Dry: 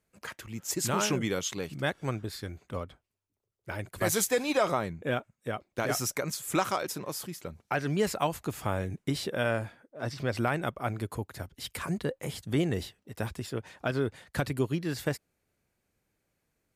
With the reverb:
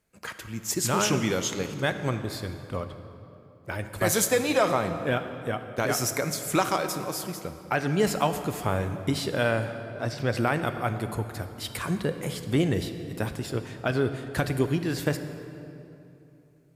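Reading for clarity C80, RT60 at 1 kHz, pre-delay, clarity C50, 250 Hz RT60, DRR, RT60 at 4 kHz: 10.0 dB, 2.8 s, 13 ms, 9.5 dB, 3.4 s, 8.5 dB, 1.9 s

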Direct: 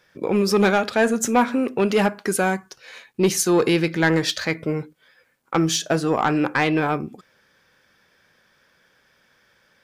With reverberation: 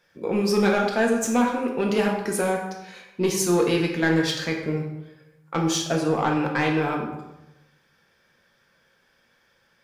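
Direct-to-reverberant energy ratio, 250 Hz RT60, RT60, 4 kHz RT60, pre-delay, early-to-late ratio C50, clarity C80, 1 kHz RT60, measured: 0.0 dB, 1.0 s, 0.95 s, 0.70 s, 4 ms, 5.0 dB, 7.0 dB, 0.90 s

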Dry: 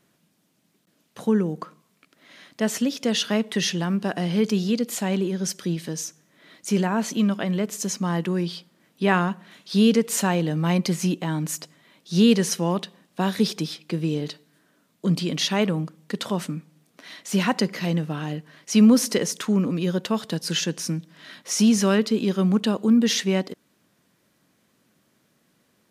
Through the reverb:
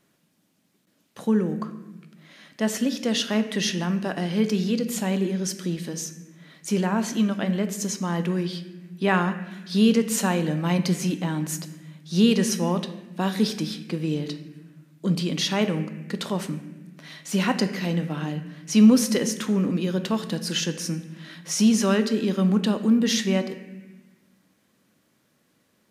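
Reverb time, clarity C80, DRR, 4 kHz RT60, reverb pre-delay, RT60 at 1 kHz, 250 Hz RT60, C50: 1.2 s, 12.5 dB, 8.0 dB, 1.1 s, 4 ms, 1.1 s, 1.6 s, 10.5 dB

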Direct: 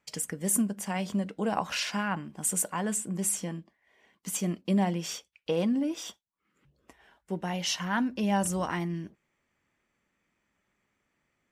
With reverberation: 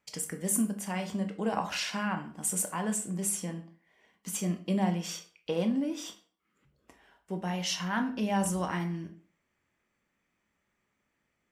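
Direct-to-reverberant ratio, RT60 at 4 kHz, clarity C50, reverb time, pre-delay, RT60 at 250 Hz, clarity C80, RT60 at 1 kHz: 6.0 dB, 0.35 s, 11.5 dB, 0.45 s, 17 ms, 0.45 s, 16.5 dB, 0.45 s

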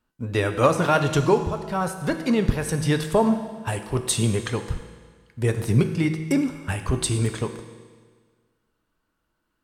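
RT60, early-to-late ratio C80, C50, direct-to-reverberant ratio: 1.6 s, 10.0 dB, 9.0 dB, 7.0 dB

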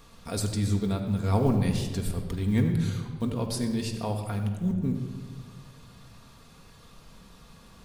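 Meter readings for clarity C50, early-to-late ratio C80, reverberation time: 6.0 dB, 7.0 dB, 1.6 s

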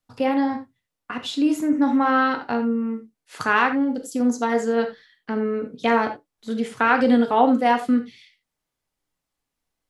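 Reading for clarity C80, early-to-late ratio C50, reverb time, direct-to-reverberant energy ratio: 16.0 dB, 10.0 dB, no single decay rate, 5.0 dB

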